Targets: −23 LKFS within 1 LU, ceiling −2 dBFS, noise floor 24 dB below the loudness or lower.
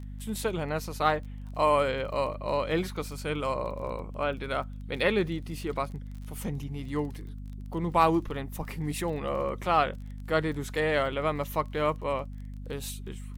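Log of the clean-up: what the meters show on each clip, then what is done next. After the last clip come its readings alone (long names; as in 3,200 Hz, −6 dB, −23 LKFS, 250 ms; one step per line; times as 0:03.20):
crackle rate 23 per second; mains hum 50 Hz; hum harmonics up to 250 Hz; level of the hum −37 dBFS; integrated loudness −30.0 LKFS; sample peak −10.5 dBFS; target loudness −23.0 LKFS
→ click removal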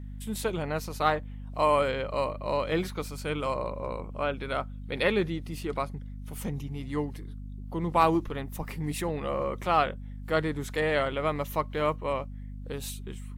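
crackle rate 0 per second; mains hum 50 Hz; hum harmonics up to 250 Hz; level of the hum −37 dBFS
→ hum removal 50 Hz, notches 5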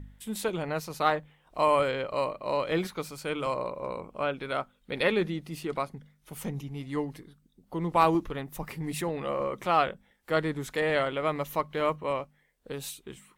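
mains hum none found; integrated loudness −30.5 LKFS; sample peak −10.5 dBFS; target loudness −23.0 LKFS
→ level +7.5 dB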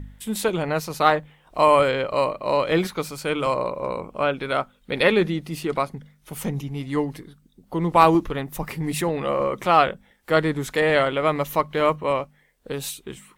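integrated loudness −23.0 LKFS; sample peak −3.0 dBFS; background noise floor −60 dBFS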